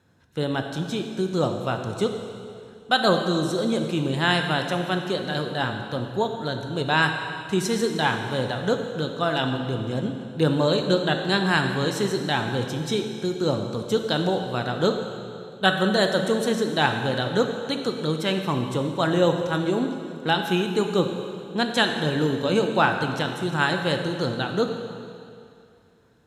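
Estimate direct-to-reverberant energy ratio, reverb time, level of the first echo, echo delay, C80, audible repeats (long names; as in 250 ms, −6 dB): 4.5 dB, 2.4 s, no echo audible, no echo audible, 6.5 dB, no echo audible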